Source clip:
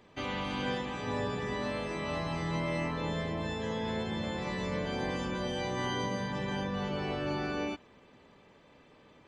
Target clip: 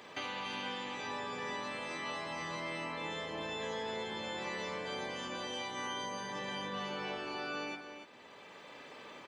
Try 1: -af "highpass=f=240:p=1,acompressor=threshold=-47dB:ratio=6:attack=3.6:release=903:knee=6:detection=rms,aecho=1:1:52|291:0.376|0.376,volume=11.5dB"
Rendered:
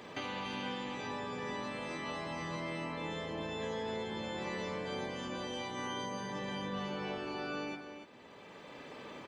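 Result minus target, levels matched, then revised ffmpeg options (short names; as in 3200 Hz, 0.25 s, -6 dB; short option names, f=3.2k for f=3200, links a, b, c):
250 Hz band +4.5 dB
-af "highpass=f=760:p=1,acompressor=threshold=-47dB:ratio=6:attack=3.6:release=903:knee=6:detection=rms,aecho=1:1:52|291:0.376|0.376,volume=11.5dB"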